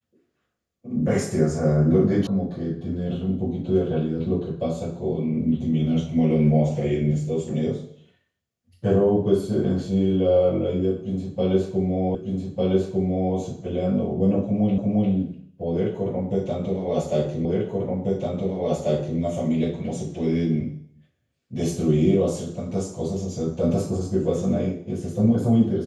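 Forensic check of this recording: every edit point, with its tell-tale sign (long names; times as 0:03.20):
0:02.27: cut off before it has died away
0:12.15: the same again, the last 1.2 s
0:14.78: the same again, the last 0.35 s
0:17.45: the same again, the last 1.74 s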